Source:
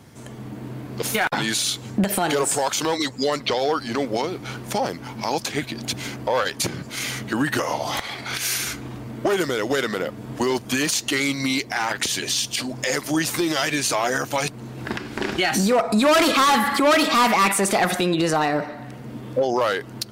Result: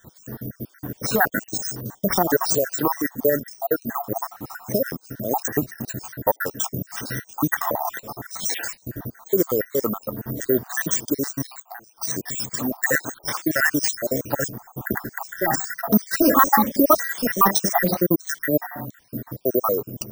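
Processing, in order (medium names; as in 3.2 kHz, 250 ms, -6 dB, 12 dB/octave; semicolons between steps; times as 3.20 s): random holes in the spectrogram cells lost 68%; brick-wall FIR band-stop 2–5 kHz; careless resampling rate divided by 3×, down none, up zero stuff; peaking EQ 14 kHz -12 dB 0.85 oct; 11.48–11.97 s: compression 12:1, threshold -40 dBFS, peak gain reduction 19.5 dB; 12.80–14.21 s: dynamic bell 1.8 kHz, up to +5 dB, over -42 dBFS, Q 0.71; trim +4.5 dB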